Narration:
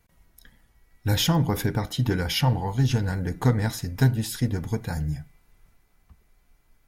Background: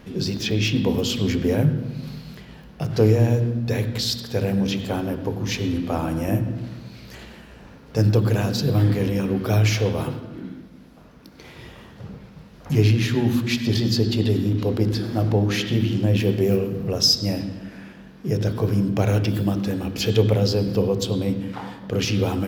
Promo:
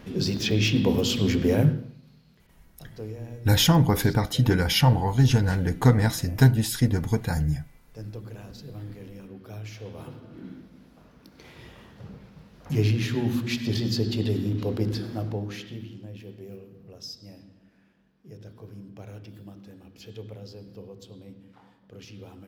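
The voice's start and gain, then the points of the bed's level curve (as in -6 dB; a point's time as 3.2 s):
2.40 s, +3.0 dB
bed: 1.68 s -1 dB
2.02 s -20.5 dB
9.73 s -20.5 dB
10.51 s -5.5 dB
14.96 s -5.5 dB
16.13 s -22.5 dB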